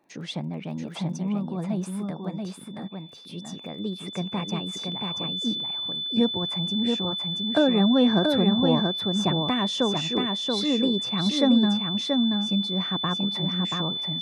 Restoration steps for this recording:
click removal
notch filter 3,500 Hz, Q 30
echo removal 681 ms −4 dB

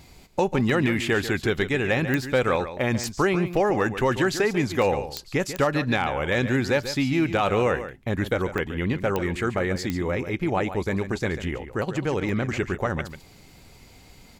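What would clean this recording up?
clipped peaks rebuilt −12.5 dBFS
click removal
repair the gap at 0:04.82/0:08.58/0:09.78/0:12.29, 1.8 ms
echo removal 142 ms −11.5 dB

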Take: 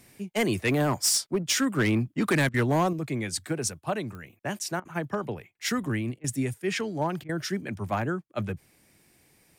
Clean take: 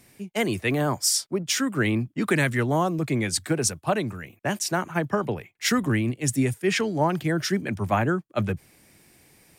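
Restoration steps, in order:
clipped peaks rebuilt −18.5 dBFS
click removal
repair the gap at 0:02.49/0:04.80/0:06.19/0:07.24, 50 ms
level correction +5.5 dB, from 0:02.93

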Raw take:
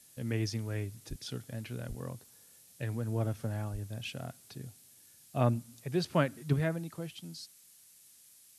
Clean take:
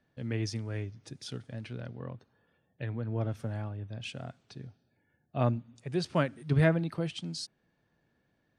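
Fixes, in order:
0:01.09–0:01.21: high-pass filter 140 Hz 24 dB per octave
0:01.88–0:02.00: high-pass filter 140 Hz 24 dB per octave
0:03.72–0:03.84: high-pass filter 140 Hz 24 dB per octave
noise reduction from a noise print 15 dB
level 0 dB, from 0:06.56 +7.5 dB

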